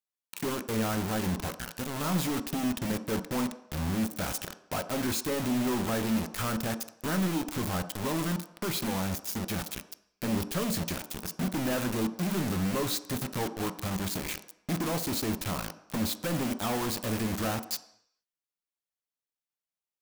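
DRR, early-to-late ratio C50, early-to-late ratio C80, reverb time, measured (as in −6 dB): 9.0 dB, 14.0 dB, 16.0 dB, 0.70 s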